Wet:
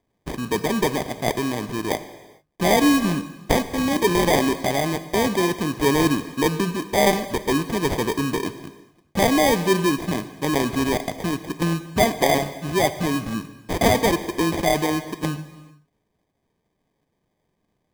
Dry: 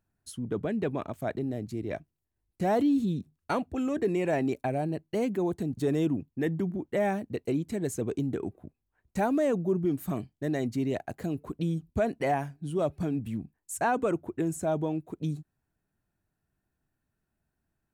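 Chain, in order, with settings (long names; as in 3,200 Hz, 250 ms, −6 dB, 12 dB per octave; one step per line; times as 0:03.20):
meter weighting curve D
decimation without filtering 32×
reverb whose tail is shaped and stops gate 470 ms falling, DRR 11 dB
level +8.5 dB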